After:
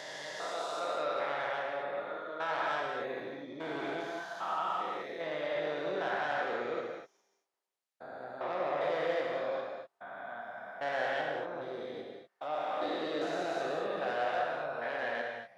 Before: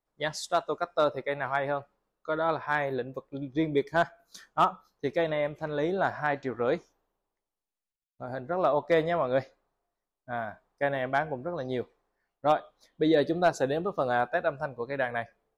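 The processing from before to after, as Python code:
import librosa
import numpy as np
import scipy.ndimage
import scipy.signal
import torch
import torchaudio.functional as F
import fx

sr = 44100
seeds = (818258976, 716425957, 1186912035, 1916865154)

y = fx.spec_steps(x, sr, hold_ms=400)
y = 10.0 ** (-28.0 / 20.0) * np.tanh(y / 10.0 ** (-28.0 / 20.0))
y = fx.weighting(y, sr, curve='A')
y = fx.rev_gated(y, sr, seeds[0], gate_ms=270, shape='flat', drr_db=-0.5)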